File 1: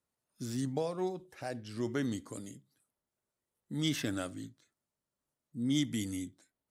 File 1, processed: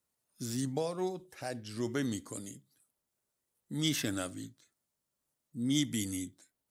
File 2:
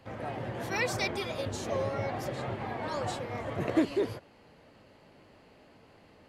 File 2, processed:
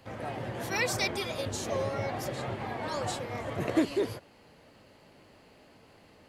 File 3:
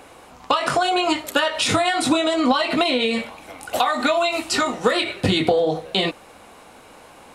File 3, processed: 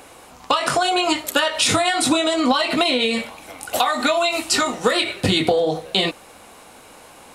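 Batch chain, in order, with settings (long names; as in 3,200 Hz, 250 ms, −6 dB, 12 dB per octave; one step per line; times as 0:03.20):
high-shelf EQ 4,600 Hz +7.5 dB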